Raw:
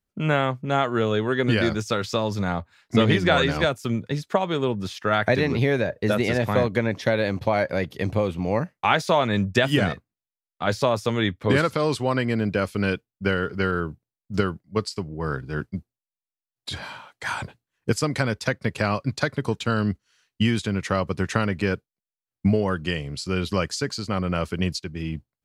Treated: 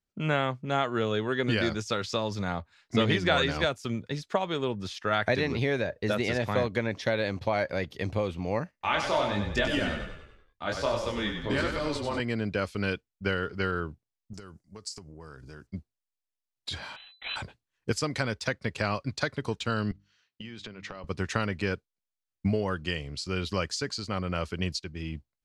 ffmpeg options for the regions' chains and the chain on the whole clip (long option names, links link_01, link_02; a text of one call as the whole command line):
ffmpeg -i in.wav -filter_complex "[0:a]asettb=1/sr,asplit=3[link_01][link_02][link_03];[link_01]atrim=end=8.714[link_04];[link_02]atrim=start=8.71:end=12.2,asetpts=PTS-STARTPTS,afade=type=in:duration=0.004:curve=qsin,afade=type=out:start_time=3.486:duration=0.004:curve=qsin,aecho=1:1:3.3:0.34,atrim=end_sample=153909,flanger=delay=18.5:depth=7.6:speed=1.3,asplit=7[link_05][link_06][link_07][link_08][link_09][link_10][link_11];[link_06]adelay=96,afreqshift=-30,volume=-6dB[link_12];[link_07]adelay=192,afreqshift=-60,volume=-12dB[link_13];[link_08]adelay=288,afreqshift=-90,volume=-18dB[link_14];[link_09]adelay=384,afreqshift=-120,volume=-24.1dB[link_15];[link_10]adelay=480,afreqshift=-150,volume=-30.1dB[link_16];[link_11]adelay=576,afreqshift=-180,volume=-36.1dB[link_17];[link_05][link_12][link_13][link_14][link_15][link_16][link_17]amix=inputs=7:normalize=0,atrim=end_sample=153909[link_18];[link_03]atrim=start=12.196[link_19];[link_04][link_18]acrossfade=duration=0.004:curve1=hsin:curve2=qsin[link_20];[link_20][link_19]acrossfade=duration=0.004:curve1=qsin:curve2=hsin,asettb=1/sr,asplit=3[link_21][link_22][link_23];[link_21]atrim=end=14.334[link_24];[link_22]atrim=start=14.33:end=15.67,asetpts=PTS-STARTPTS,afade=type=in:duration=0.004:curve=qsin,afade=type=out:start_time=1.336:duration=0.004:curve=qsin,acompressor=threshold=-36dB:ratio=6:attack=3.2:release=140:knee=1:detection=peak,highshelf=frequency=4800:width_type=q:width=1.5:gain=10[link_25];[link_23]atrim=start=15.666[link_26];[link_24][link_25]acrossfade=duration=0.004:curve1=hsin:curve2=qsin[link_27];[link_27][link_26]acrossfade=duration=0.004:curve1=qsin:curve2=hsin,asettb=1/sr,asplit=3[link_28][link_29][link_30];[link_28]atrim=end=16.964[link_31];[link_29]atrim=start=16.96:end=17.36,asetpts=PTS-STARTPTS,afade=type=in:duration=0.004:curve=qsin,afade=type=out:start_time=0.396:duration=0.004:curve=qsin,aeval=exprs='max(val(0),0)':channel_layout=same,lowpass=frequency=3400:width_type=q:width=0.5098,lowpass=frequency=3400:width_type=q:width=0.6013,lowpass=frequency=3400:width_type=q:width=0.9,lowpass=frequency=3400:width_type=q:width=2.563,afreqshift=-4000[link_32];[link_30]atrim=start=17.356[link_33];[link_31][link_32]acrossfade=duration=0.004:curve1=hsin:curve2=qsin[link_34];[link_34][link_33]acrossfade=duration=0.004:curve1=qsin:curve2=hsin,asettb=1/sr,asplit=3[link_35][link_36][link_37];[link_35]atrim=end=19.914[link_38];[link_36]atrim=start=19.91:end=21.04,asetpts=PTS-STARTPTS,afade=type=in:duration=0.004:curve=qsin,afade=type=out:start_time=1.126:duration=0.004:curve=qsin,highpass=110,lowpass=4800,acompressor=threshold=-31dB:ratio=12:attack=3.2:release=140:knee=1:detection=peak,bandreject=frequency=50:width_type=h:width=6,bandreject=frequency=100:width_type=h:width=6,bandreject=frequency=150:width_type=h:width=6,bandreject=frequency=200:width_type=h:width=6,bandreject=frequency=250:width_type=h:width=6,bandreject=frequency=300:width_type=h:width=6[link_39];[link_37]atrim=start=21.036[link_40];[link_38][link_39]acrossfade=duration=0.004:curve1=hsin:curve2=qsin[link_41];[link_41][link_40]acrossfade=duration=0.004:curve1=qsin:curve2=hsin,asubboost=boost=3.5:cutoff=61,lowpass=5400,aemphasis=mode=production:type=50kf,volume=-5.5dB" out.wav